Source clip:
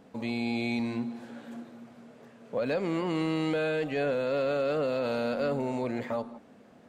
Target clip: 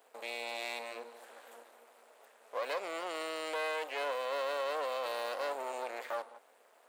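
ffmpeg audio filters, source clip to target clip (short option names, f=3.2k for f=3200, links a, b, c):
-af "aexciter=amount=4.6:drive=2.7:freq=7.8k,aeval=exprs='max(val(0),0)':c=same,highpass=f=500:w=0.5412,highpass=f=500:w=1.3066"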